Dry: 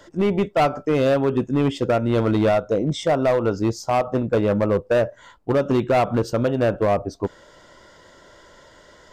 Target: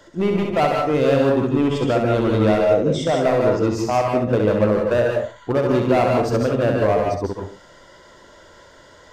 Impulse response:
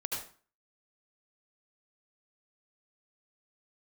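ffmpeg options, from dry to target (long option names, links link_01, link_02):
-filter_complex "[0:a]asplit=2[link_01][link_02];[1:a]atrim=start_sample=2205,afade=type=out:start_time=0.31:duration=0.01,atrim=end_sample=14112,adelay=66[link_03];[link_02][link_03]afir=irnorm=-1:irlink=0,volume=-2.5dB[link_04];[link_01][link_04]amix=inputs=2:normalize=0,volume=-1dB"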